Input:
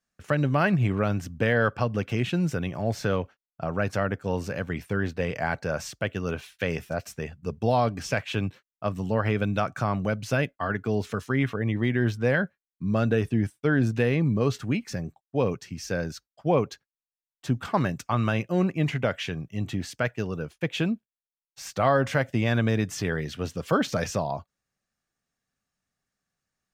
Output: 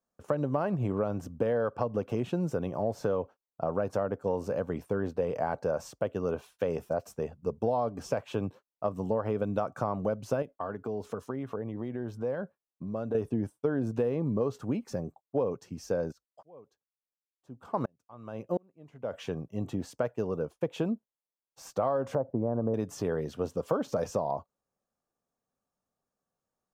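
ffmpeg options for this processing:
-filter_complex "[0:a]asettb=1/sr,asplit=3[s0][s1][s2];[s0]atrim=end=10.424[s3];[s1]atrim=start=10.42:end=13.15,asetpts=PTS-STARTPTS,afade=t=in:d=0.004:c=qsin,afade=t=out:st=2.726:d=0.004:c=qsin,acompressor=threshold=0.0251:ratio=3:attack=3.2:release=140:knee=1:detection=peak[s4];[s2]atrim=start=13.146[s5];[s3][s4]acrossfade=d=0.004:c1=hsin:c2=qsin[s6];[s6][s5]acrossfade=d=0.004:c1=qsin:c2=hsin,asplit=3[s7][s8][s9];[s7]afade=t=out:st=16.11:d=0.02[s10];[s8]aeval=exprs='val(0)*pow(10,-39*if(lt(mod(-1.4*n/s,1),2*abs(-1.4)/1000),1-mod(-1.4*n/s,1)/(2*abs(-1.4)/1000),(mod(-1.4*n/s,1)-2*abs(-1.4)/1000)/(1-2*abs(-1.4)/1000))/20)':c=same,afade=t=in:st=16.11:d=0.02,afade=t=out:st=19.12:d=0.02[s11];[s9]afade=t=in:st=19.12:d=0.02[s12];[s10][s11][s12]amix=inputs=3:normalize=0,asettb=1/sr,asplit=3[s13][s14][s15];[s13]atrim=end=22.154[s16];[s14]atrim=start=22.15:end=22.74,asetpts=PTS-STARTPTS,afade=t=in:d=0.004:c=qsin,afade=t=out:st=0.586:d=0.004:c=qsin,lowpass=f=1000:w=0.5412,lowpass=f=1000:w=1.3066[s17];[s15]atrim=start=22.736[s18];[s16][s17]acrossfade=d=0.004:c1=hsin:c2=qsin[s19];[s19][s18]acrossfade=d=0.004:c1=qsin:c2=hsin,equalizer=f=250:t=o:w=1:g=4,equalizer=f=500:t=o:w=1:g=10,equalizer=f=1000:t=o:w=1:g=9,equalizer=f=2000:t=o:w=1:g=-10,equalizer=f=4000:t=o:w=1:g=-4,acompressor=threshold=0.126:ratio=6,volume=0.447"

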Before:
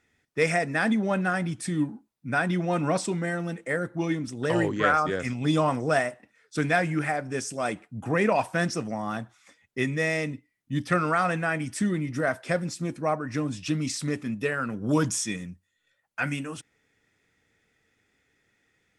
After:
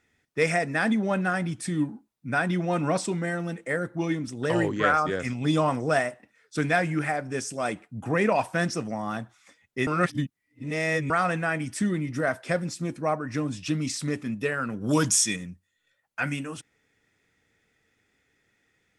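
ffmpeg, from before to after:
-filter_complex "[0:a]asplit=3[s0][s1][s2];[s0]afade=t=out:st=14.8:d=0.02[s3];[s1]highshelf=f=2200:g=8.5,afade=t=in:st=14.8:d=0.02,afade=t=out:st=15.35:d=0.02[s4];[s2]afade=t=in:st=15.35:d=0.02[s5];[s3][s4][s5]amix=inputs=3:normalize=0,asplit=3[s6][s7][s8];[s6]atrim=end=9.872[s9];[s7]atrim=start=9.868:end=11.102,asetpts=PTS-STARTPTS,areverse[s10];[s8]atrim=start=11.098[s11];[s9][s10]acrossfade=d=0.004:c1=hsin:c2=hsin[s12];[s12][s11]acrossfade=d=0.004:c1=hsin:c2=hsin"

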